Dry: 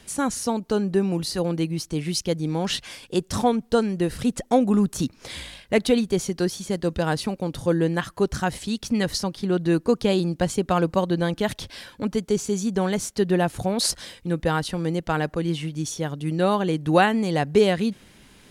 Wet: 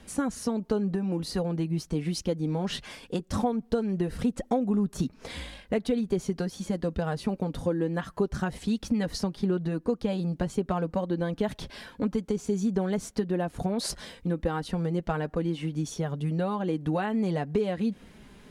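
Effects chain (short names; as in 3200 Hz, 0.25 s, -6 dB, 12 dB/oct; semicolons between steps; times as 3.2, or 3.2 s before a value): high shelf 2100 Hz -10 dB; compressor 6:1, threshold -26 dBFS, peak gain reduction 12.5 dB; flange 0.9 Hz, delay 3.6 ms, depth 1.5 ms, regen -38%; gain +5.5 dB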